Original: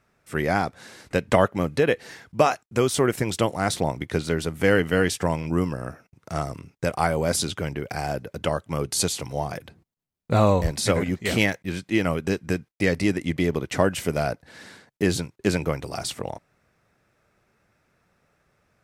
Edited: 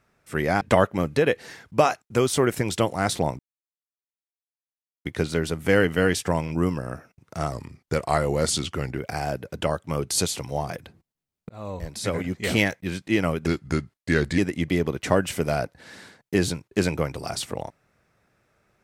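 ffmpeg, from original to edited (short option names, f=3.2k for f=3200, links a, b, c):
-filter_complex "[0:a]asplit=8[a][b][c][d][e][f][g][h];[a]atrim=end=0.612[i];[b]atrim=start=1.218:end=4,asetpts=PTS-STARTPTS,afade=t=out:st=2.778:d=0.004:c=hsin,apad=pad_dur=1.66[j];[c]atrim=start=4:end=6.474,asetpts=PTS-STARTPTS,afade=t=in:d=0.004:c=hsin[k];[d]atrim=start=6.47:end=7.8,asetpts=PTS-STARTPTS,asetrate=40131,aresample=44100[l];[e]atrim=start=7.796:end=10.31,asetpts=PTS-STARTPTS,afade=t=out:st=2.51:d=0.004:c=hsin[m];[f]atrim=start=10.31:end=12.284,asetpts=PTS-STARTPTS,afade=t=in:d=1.08[n];[g]atrim=start=12.28:end=13.06,asetpts=PTS-STARTPTS,asetrate=37485,aresample=44100,atrim=end_sample=40468,asetpts=PTS-STARTPTS[o];[h]atrim=start=13.056[p];[j][k]concat=n=2:v=0:a=1[q];[i][q]acrossfade=d=0.004:c1=hsin:c2=hsin[r];[r][l]acrossfade=d=0.004:c1=hsin:c2=hsin[s];[m][n]concat=n=2:v=0:a=1[t];[s][t]acrossfade=d=0.004:c1=hsin:c2=hsin[u];[u][o]acrossfade=d=0.004:c1=hsin:c2=hsin[v];[v][p]acrossfade=d=0.004:c1=hsin:c2=hsin"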